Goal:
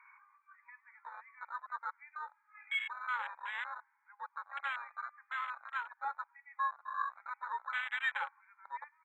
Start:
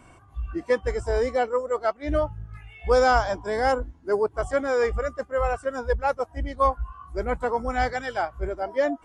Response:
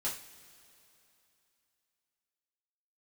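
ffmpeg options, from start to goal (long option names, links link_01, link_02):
-filter_complex "[0:a]acompressor=threshold=-36dB:ratio=3,asplit=2[link_01][link_02];[1:a]atrim=start_sample=2205,asetrate=88200,aresample=44100,lowpass=5800[link_03];[link_02][link_03]afir=irnorm=-1:irlink=0,volume=-10.5dB[link_04];[link_01][link_04]amix=inputs=2:normalize=0,alimiter=level_in=10dB:limit=-24dB:level=0:latency=1:release=153,volume=-10dB,asplit=3[link_05][link_06][link_07];[link_06]adelay=98,afreqshift=74,volume=-22dB[link_08];[link_07]adelay=196,afreqshift=148,volume=-31.9dB[link_09];[link_05][link_08][link_09]amix=inputs=3:normalize=0,afftfilt=real='re*between(b*sr/4096,810,2500)':imag='im*between(b*sr/4096,810,2500)':win_size=4096:overlap=0.75,afwtdn=0.00398,tiltshelf=frequency=1500:gain=-8,volume=13dB"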